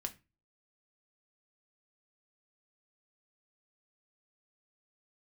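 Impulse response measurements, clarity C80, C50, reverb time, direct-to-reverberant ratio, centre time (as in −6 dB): 24.0 dB, 17.5 dB, 0.25 s, 5.0 dB, 6 ms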